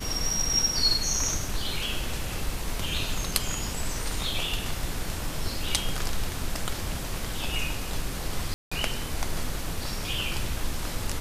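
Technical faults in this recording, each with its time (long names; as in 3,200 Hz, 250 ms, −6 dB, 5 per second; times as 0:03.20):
0:08.54–0:08.71: drop-out 175 ms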